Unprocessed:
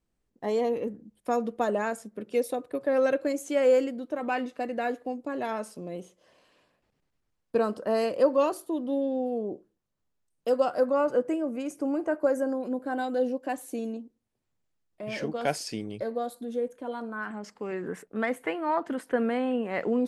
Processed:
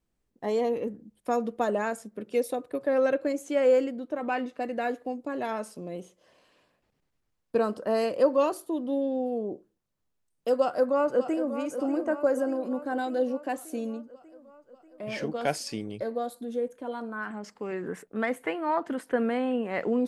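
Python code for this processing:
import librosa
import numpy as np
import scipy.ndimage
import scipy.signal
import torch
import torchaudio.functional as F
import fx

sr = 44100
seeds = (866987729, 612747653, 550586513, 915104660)

y = fx.high_shelf(x, sr, hz=4400.0, db=-5.5, at=(2.94, 4.62))
y = fx.echo_throw(y, sr, start_s=10.57, length_s=0.98, ms=590, feedback_pct=65, wet_db=-10.5)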